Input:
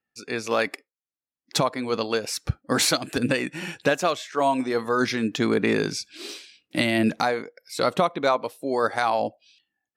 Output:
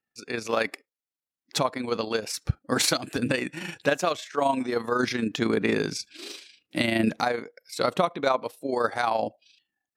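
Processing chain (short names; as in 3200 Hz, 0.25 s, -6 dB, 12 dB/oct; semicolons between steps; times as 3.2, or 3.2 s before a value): AM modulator 26 Hz, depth 35%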